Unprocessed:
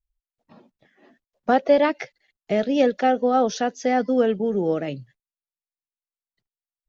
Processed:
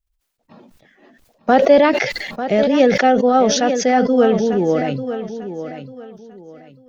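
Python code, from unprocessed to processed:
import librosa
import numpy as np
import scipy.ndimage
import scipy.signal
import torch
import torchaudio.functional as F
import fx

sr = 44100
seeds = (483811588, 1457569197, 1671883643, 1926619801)

p1 = x + fx.echo_feedback(x, sr, ms=895, feedback_pct=27, wet_db=-11, dry=0)
p2 = fx.sustainer(p1, sr, db_per_s=41.0)
y = p2 * librosa.db_to_amplitude(5.0)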